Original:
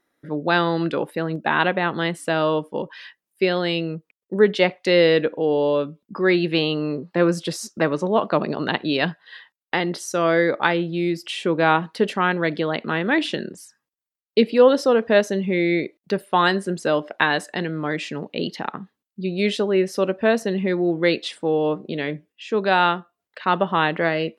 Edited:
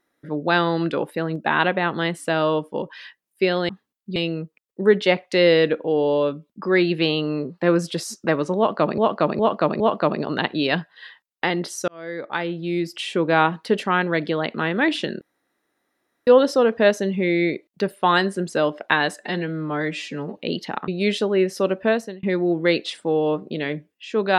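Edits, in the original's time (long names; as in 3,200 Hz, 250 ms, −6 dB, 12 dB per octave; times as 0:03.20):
0:08.10–0:08.51: repeat, 4 plays
0:10.18–0:11.20: fade in
0:13.51–0:14.57: fill with room tone
0:17.50–0:18.28: time-stretch 1.5×
0:18.79–0:19.26: move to 0:03.69
0:20.23–0:20.61: fade out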